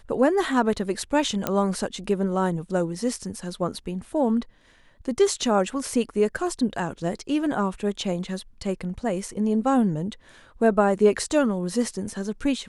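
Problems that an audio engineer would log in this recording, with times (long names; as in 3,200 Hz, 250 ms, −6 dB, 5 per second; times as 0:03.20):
0:01.47: click −8 dBFS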